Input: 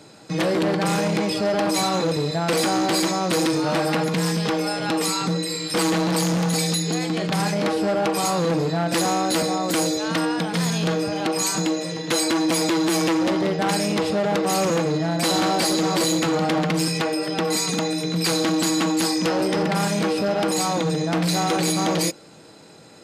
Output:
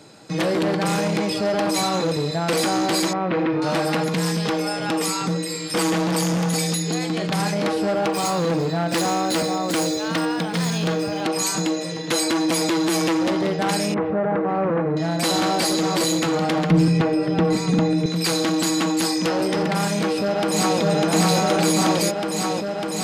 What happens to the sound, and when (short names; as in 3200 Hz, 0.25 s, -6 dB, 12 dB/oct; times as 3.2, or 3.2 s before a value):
3.13–3.62 LPF 2500 Hz 24 dB/oct
4.62–6.9 notch 4100 Hz
7.93–11.24 median filter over 3 samples
13.94–14.97 LPF 1800 Hz 24 dB/oct
16.7–18.06 RIAA curve playback
19.93–20.8 echo throw 0.6 s, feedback 85%, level -0.5 dB